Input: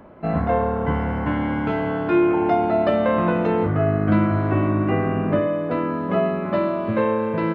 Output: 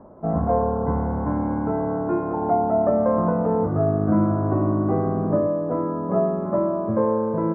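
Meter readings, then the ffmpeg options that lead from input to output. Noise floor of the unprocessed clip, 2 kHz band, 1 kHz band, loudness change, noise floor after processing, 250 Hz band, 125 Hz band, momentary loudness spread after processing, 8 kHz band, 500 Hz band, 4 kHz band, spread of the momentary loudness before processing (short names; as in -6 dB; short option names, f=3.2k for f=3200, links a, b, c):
-26 dBFS, -13.5 dB, -1.0 dB, -1.0 dB, -27 dBFS, -1.5 dB, -1.5 dB, 4 LU, n/a, -0.5 dB, under -35 dB, 5 LU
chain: -af "lowpass=f=1.1k:w=0.5412,lowpass=f=1.1k:w=1.3066,bandreject=f=50:t=h:w=6,bandreject=f=100:t=h:w=6,bandreject=f=150:t=h:w=6,bandreject=f=200:t=h:w=6,bandreject=f=250:t=h:w=6,bandreject=f=300:t=h:w=6,bandreject=f=350:t=h:w=6"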